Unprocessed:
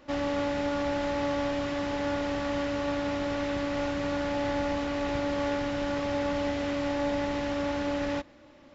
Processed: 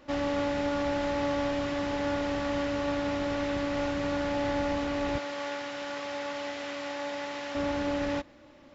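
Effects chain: 5.18–7.55 HPF 970 Hz 6 dB/oct

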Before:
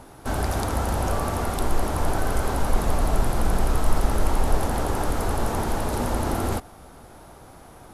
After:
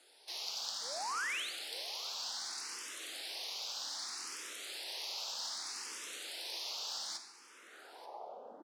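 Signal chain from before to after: HPF 160 Hz 12 dB/oct; low shelf 360 Hz +9 dB; in parallel at -1 dB: wrapped overs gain 25.5 dB; on the sum: band-pass sweep 5100 Hz -> 300 Hz, 6.67–7.88; painted sound rise, 0.75–1.41, 340–5300 Hz -36 dBFS; frequency shift +130 Hz; on a send: echo 0.813 s -17.5 dB; on the sum: digital reverb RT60 0.99 s, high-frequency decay 0.85×, pre-delay 5 ms, DRR 7.5 dB; speed mistake 48 kHz file played as 44.1 kHz; endless phaser +0.64 Hz; gain -1.5 dB

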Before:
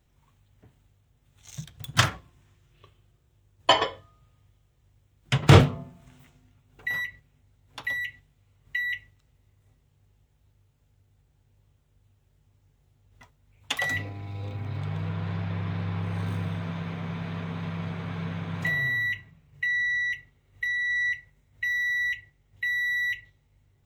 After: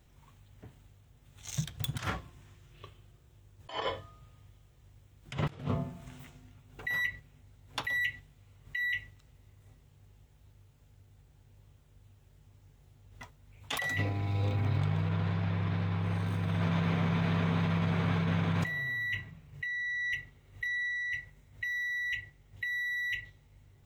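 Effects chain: negative-ratio compressor -33 dBFS, ratio -1

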